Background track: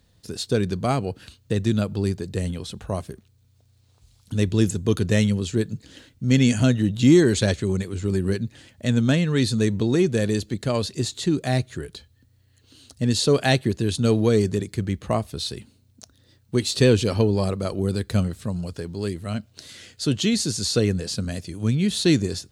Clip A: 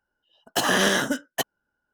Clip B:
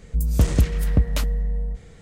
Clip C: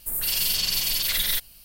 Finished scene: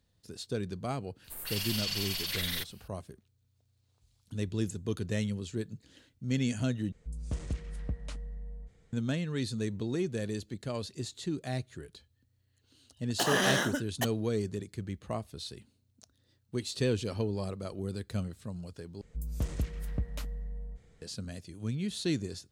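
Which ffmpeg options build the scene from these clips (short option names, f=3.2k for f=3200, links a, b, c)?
-filter_complex "[2:a]asplit=2[a][b];[0:a]volume=-12.5dB[c];[3:a]asplit=2[d][e];[e]highpass=f=720:p=1,volume=9dB,asoftclip=type=tanh:threshold=-10.5dB[f];[d][f]amix=inputs=2:normalize=0,lowpass=f=2.9k:p=1,volume=-6dB[g];[a]aresample=22050,aresample=44100[h];[c]asplit=3[i][j][k];[i]atrim=end=6.924[l];[h]atrim=end=2.01,asetpts=PTS-STARTPTS,volume=-17.5dB[m];[j]atrim=start=8.926:end=19.014[n];[b]atrim=end=2.01,asetpts=PTS-STARTPTS,volume=-15dB[o];[k]atrim=start=21.016[p];[g]atrim=end=1.64,asetpts=PTS-STARTPTS,volume=-8dB,afade=t=in:d=0.004:c=hsin,afade=t=out:st=1.636:d=0.004:c=hsin,adelay=1240[q];[1:a]atrim=end=1.93,asetpts=PTS-STARTPTS,volume=-7dB,afade=t=in:d=0.004:c=hsin,afade=t=out:st=1.926:d=0.004:c=hsin,adelay=12630[r];[l][m]acrossfade=d=0.004:c1=hsin:c2=hsin[s];[s][n]acrossfade=d=0.004:c1=hsin:c2=hsin[t];[t][o]acrossfade=d=0.004:c1=hsin:c2=hsin[u];[u][p]acrossfade=d=0.004:c1=hsin:c2=hsin[v];[v][q][r]amix=inputs=3:normalize=0"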